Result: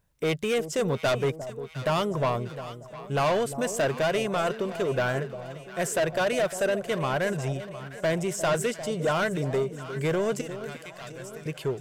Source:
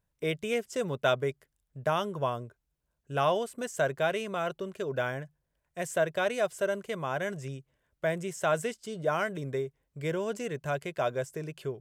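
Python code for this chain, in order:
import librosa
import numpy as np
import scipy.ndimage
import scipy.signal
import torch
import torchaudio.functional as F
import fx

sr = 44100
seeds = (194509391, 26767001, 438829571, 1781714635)

y = 10.0 ** (-29.0 / 20.0) * np.tanh(x / 10.0 ** (-29.0 / 20.0))
y = fx.tone_stack(y, sr, knobs='5-5-5', at=(10.41, 11.46))
y = fx.echo_alternate(y, sr, ms=353, hz=870.0, feedback_pct=72, wet_db=-11.0)
y = y * 10.0 ** (8.5 / 20.0)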